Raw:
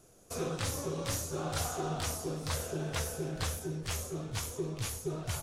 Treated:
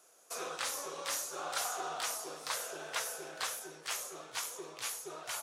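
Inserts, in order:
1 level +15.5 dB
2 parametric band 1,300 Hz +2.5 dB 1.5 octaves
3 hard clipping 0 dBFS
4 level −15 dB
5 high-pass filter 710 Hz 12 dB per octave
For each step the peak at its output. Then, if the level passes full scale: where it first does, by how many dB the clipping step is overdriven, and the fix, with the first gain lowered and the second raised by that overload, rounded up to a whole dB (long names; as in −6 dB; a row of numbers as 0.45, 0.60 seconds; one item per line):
−5.0, −4.0, −4.0, −19.0, −21.5 dBFS
no step passes full scale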